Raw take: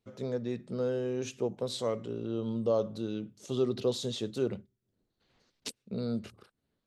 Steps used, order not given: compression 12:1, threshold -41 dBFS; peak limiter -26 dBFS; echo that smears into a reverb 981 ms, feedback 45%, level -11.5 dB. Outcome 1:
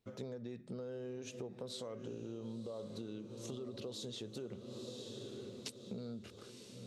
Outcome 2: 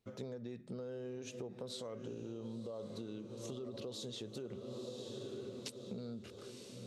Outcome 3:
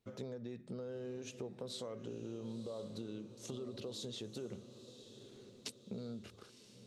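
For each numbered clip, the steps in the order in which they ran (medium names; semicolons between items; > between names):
peak limiter > echo that smears into a reverb > compression; echo that smears into a reverb > peak limiter > compression; peak limiter > compression > echo that smears into a reverb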